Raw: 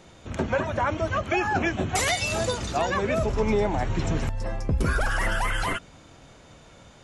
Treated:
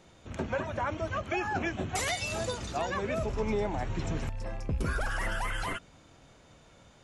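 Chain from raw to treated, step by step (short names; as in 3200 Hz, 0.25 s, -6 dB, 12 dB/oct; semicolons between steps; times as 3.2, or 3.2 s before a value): rattling part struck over -30 dBFS, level -37 dBFS; gain -7 dB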